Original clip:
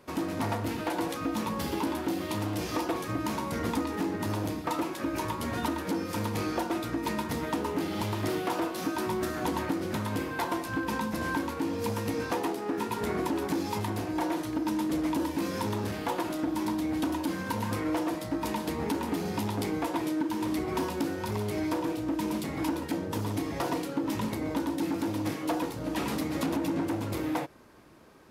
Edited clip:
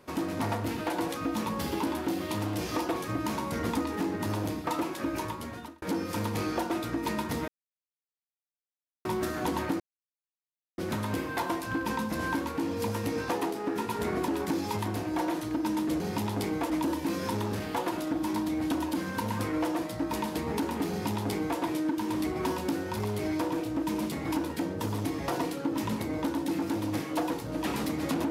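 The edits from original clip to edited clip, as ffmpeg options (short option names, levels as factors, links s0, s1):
-filter_complex "[0:a]asplit=7[s0][s1][s2][s3][s4][s5][s6];[s0]atrim=end=5.82,asetpts=PTS-STARTPTS,afade=t=out:st=5.1:d=0.72[s7];[s1]atrim=start=5.82:end=7.48,asetpts=PTS-STARTPTS,afade=t=in:d=0.004:c=hsin,afade=t=out:st=1.656:d=0.004:c=hsin[s8];[s2]atrim=start=7.48:end=9.05,asetpts=PTS-STARTPTS,volume=0[s9];[s3]atrim=start=9.05:end=9.8,asetpts=PTS-STARTPTS,afade=t=in:d=0.004:c=hsin,afade=t=out:st=0.746:d=0.004:c=hsin,apad=pad_dur=0.98[s10];[s4]atrim=start=9.8:end=15.022,asetpts=PTS-STARTPTS,afade=t=in:d=0.004:c=hsin[s11];[s5]atrim=start=19.208:end=19.912[s12];[s6]atrim=start=15.018[s13];[s7][s8][s9][s10][s11]concat=n=5:v=0:a=1[s14];[s14][s12]acrossfade=d=0.004:c1=hsin:c2=hsin[s15];[s15][s13]acrossfade=d=0.004:c1=hsin:c2=hsin"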